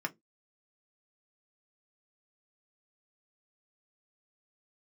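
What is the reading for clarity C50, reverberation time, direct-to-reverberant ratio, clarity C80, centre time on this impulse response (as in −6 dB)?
26.5 dB, 0.15 s, 2.5 dB, 36.5 dB, 4 ms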